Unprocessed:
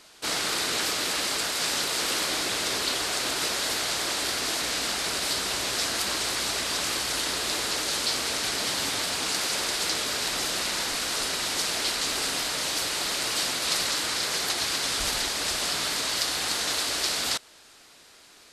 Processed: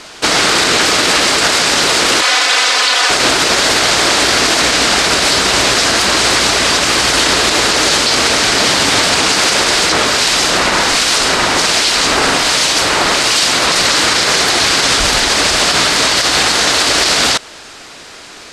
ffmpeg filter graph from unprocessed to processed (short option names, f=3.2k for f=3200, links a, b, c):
-filter_complex "[0:a]asettb=1/sr,asplit=3[a][b][c];[a]atrim=end=2.214[d];[b]atrim=start=2.21:end=3.1,asetpts=PTS-STARTPTS,afade=t=in:d=0.004:c=qsin,afade=t=out:st=0.886:d=0.004:c=qsin,highpass=740,highshelf=f=9.4k:g=-8,aecho=1:1:4:0.8,atrim=end_sample=39249[e];[c]atrim=start=3.096[f];[d][e]acrossfade=d=0.004:c1=hsin:c2=qsin[g];[g][f]acrossfade=d=0.004:c1=qsin:c2=hsin,asettb=1/sr,asplit=3[h][i][j];[h]atrim=end=9.924[k];[i]atrim=start=9.92:end=13.72,asetpts=PTS-STARTPTS,afade=t=in:d=0.004:c=qsin,afade=t=out:st=3.796:d=0.004:c=qsin,acrossover=split=2200[l][m];[l]aeval=exprs='val(0)*(1-0.5/2+0.5/2*cos(2*PI*1.3*n/s))':c=same[n];[m]aeval=exprs='val(0)*(1-0.5/2-0.5/2*cos(2*PI*1.3*n/s))':c=same[o];[n][o]amix=inputs=2:normalize=0,equalizer=f=990:w=1.5:g=2[p];[j]atrim=start=13.716[q];[k][p]acrossfade=d=0.004:c1=hsin:c2=qsin[r];[r][q]acrossfade=d=0.004:c1=qsin:c2=hsin,lowpass=6.9k,equalizer=f=4k:w=1.6:g=-3,alimiter=level_in=22dB:limit=-1dB:release=50:level=0:latency=1,volume=-1dB"